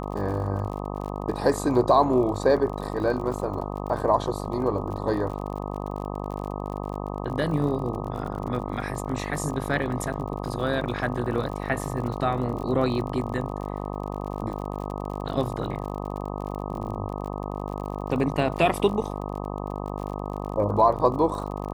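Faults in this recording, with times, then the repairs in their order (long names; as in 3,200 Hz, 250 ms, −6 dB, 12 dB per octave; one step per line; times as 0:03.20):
mains buzz 50 Hz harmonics 25 −32 dBFS
surface crackle 45 per second −34 dBFS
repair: click removal
hum removal 50 Hz, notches 25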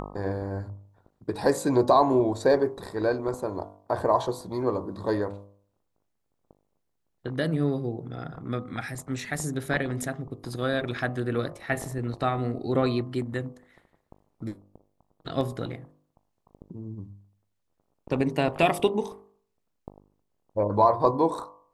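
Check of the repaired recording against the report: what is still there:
none of them is left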